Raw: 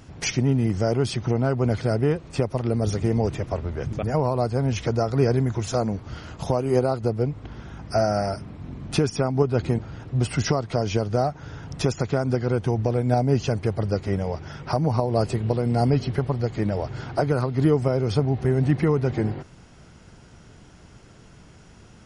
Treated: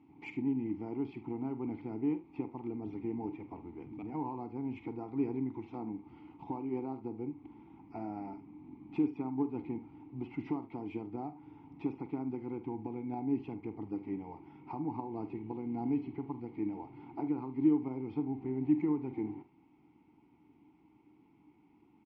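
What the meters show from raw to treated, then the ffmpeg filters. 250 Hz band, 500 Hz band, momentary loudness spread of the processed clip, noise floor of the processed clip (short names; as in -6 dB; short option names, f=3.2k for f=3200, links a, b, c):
-8.0 dB, -19.0 dB, 13 LU, -65 dBFS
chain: -filter_complex "[0:a]acrossover=split=4600[a][b];[b]acompressor=threshold=-60dB:ratio=6[c];[a][c]amix=inputs=2:normalize=0,asplit=3[d][e][f];[d]bandpass=f=300:t=q:w=8,volume=0dB[g];[e]bandpass=f=870:t=q:w=8,volume=-6dB[h];[f]bandpass=f=2.24k:t=q:w=8,volume=-9dB[i];[g][h][i]amix=inputs=3:normalize=0,adynamicsmooth=sensitivity=3.5:basefreq=3.4k,aecho=1:1:46|76:0.237|0.141,volume=-1.5dB"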